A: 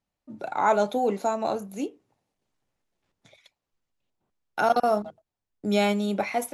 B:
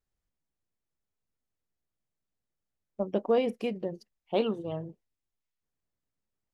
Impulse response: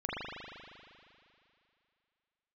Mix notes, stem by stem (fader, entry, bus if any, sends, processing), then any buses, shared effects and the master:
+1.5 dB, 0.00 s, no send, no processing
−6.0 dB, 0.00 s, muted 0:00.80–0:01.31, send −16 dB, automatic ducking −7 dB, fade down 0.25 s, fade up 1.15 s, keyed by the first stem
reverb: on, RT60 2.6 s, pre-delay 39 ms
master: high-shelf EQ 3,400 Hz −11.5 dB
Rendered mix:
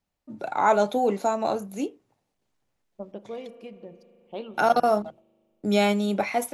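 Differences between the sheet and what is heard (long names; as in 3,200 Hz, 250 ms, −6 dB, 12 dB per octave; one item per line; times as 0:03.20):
stem B: send −16 dB → −23 dB
master: missing high-shelf EQ 3,400 Hz −11.5 dB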